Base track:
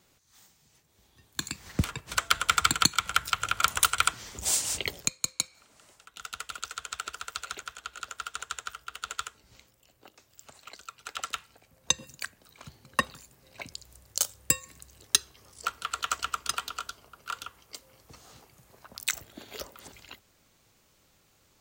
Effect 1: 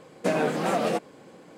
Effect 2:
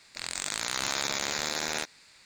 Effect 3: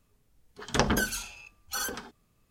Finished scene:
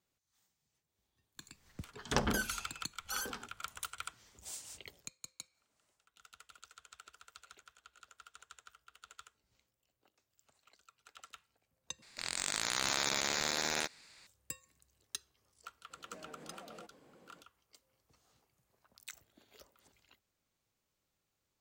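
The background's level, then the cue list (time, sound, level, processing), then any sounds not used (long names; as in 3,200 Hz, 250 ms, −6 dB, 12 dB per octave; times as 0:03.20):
base track −19.5 dB
0:01.37: mix in 3 −7 dB
0:12.02: overwrite with 2 −3 dB
0:15.88: mix in 1 −13.5 dB, fades 0.05 s + downward compressor 16 to 1, threshold −35 dBFS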